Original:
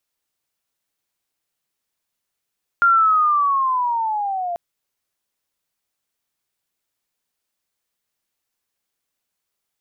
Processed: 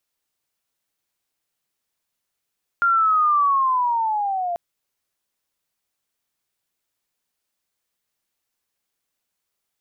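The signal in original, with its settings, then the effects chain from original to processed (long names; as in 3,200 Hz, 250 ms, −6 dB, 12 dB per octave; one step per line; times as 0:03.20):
glide linear 1,400 Hz → 680 Hz −10.5 dBFS → −22 dBFS 1.74 s
brickwall limiter −14.5 dBFS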